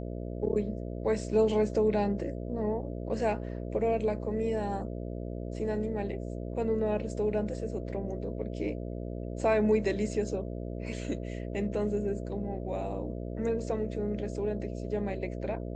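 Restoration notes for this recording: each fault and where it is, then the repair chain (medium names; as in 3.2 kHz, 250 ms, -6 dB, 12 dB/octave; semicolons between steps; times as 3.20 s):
buzz 60 Hz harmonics 11 -37 dBFS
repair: de-hum 60 Hz, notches 11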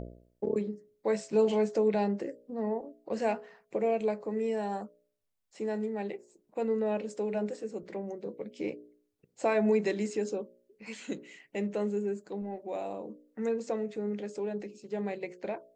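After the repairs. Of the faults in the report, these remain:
nothing left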